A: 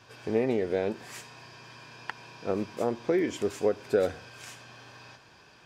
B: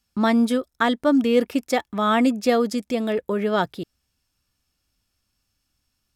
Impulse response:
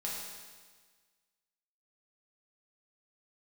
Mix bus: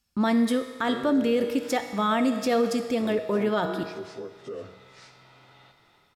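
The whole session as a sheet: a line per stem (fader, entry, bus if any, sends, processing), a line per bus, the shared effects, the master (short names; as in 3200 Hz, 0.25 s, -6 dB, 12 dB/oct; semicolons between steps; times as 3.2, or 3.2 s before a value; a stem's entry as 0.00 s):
-15.5 dB, 0.55 s, send -10 dB, inharmonic rescaling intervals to 90%; AGC gain up to 11 dB; limiter -15 dBFS, peak gain reduction 11 dB
-4.5 dB, 0.00 s, send -6 dB, dry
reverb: on, RT60 1.5 s, pre-delay 5 ms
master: limiter -15.5 dBFS, peak gain reduction 7.5 dB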